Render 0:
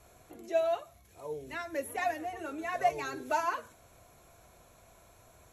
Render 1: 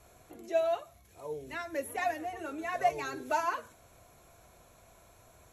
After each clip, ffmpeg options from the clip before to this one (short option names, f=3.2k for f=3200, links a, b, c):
-af anull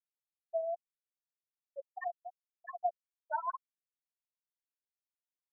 -af "bandpass=f=1.3k:t=q:w=0.86:csg=0,adynamicsmooth=sensitivity=7:basefreq=1k,afftfilt=real='re*gte(hypot(re,im),0.126)':imag='im*gte(hypot(re,im),0.126)':win_size=1024:overlap=0.75,volume=-2dB"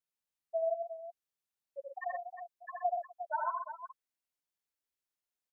-af "aecho=1:1:78|124|357:0.668|0.447|0.316"